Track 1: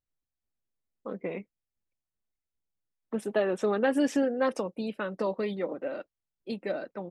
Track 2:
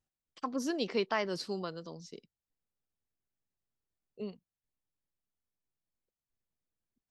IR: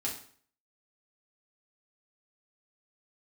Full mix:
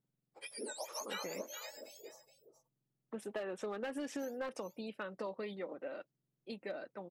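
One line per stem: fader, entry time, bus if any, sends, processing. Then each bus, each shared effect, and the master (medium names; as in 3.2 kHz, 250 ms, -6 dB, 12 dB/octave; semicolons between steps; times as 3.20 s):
-6.0 dB, 0.00 s, no send, no echo send, bass shelf 440 Hz -6.5 dB
-3.5 dB, 0.00 s, no send, echo send -11 dB, spectrum inverted on a logarithmic axis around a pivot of 1.6 kHz; treble shelf 6.7 kHz -6 dB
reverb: none
echo: delay 421 ms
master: hard clipper -29.5 dBFS, distortion -17 dB; compression, threshold -37 dBFS, peak gain reduction 5.5 dB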